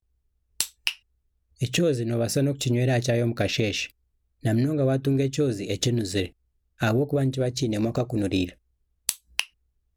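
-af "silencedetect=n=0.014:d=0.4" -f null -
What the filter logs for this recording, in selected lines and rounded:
silence_start: 0.00
silence_end: 0.60 | silence_duration: 0.60
silence_start: 0.94
silence_end: 1.61 | silence_duration: 0.67
silence_start: 3.90
silence_end: 4.44 | silence_duration: 0.54
silence_start: 6.27
silence_end: 6.80 | silence_duration: 0.53
silence_start: 8.51
silence_end: 9.09 | silence_duration: 0.58
silence_start: 9.44
silence_end: 9.97 | silence_duration: 0.53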